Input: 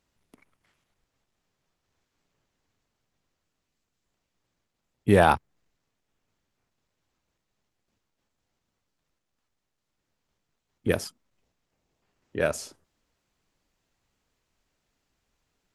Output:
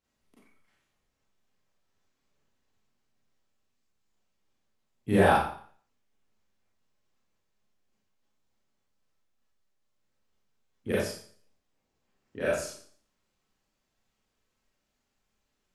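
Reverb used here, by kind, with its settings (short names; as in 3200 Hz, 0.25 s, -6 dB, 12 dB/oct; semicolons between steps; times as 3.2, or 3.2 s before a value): Schroeder reverb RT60 0.5 s, combs from 29 ms, DRR -8 dB; gain -11 dB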